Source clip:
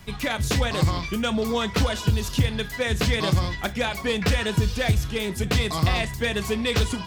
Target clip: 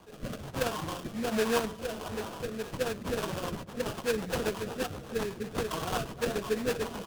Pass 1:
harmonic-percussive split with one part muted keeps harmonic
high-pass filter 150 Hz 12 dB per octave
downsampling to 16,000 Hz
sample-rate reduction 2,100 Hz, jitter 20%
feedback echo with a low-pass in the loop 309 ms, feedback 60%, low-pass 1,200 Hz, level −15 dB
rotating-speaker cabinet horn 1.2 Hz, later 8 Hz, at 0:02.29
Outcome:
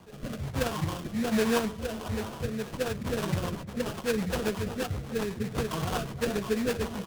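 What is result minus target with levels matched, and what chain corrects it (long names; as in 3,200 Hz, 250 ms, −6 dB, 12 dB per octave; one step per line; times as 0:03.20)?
125 Hz band +4.5 dB
harmonic-percussive split with one part muted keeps harmonic
high-pass filter 310 Hz 12 dB per octave
downsampling to 16,000 Hz
sample-rate reduction 2,100 Hz, jitter 20%
feedback echo with a low-pass in the loop 309 ms, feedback 60%, low-pass 1,200 Hz, level −15 dB
rotating-speaker cabinet horn 1.2 Hz, later 8 Hz, at 0:02.29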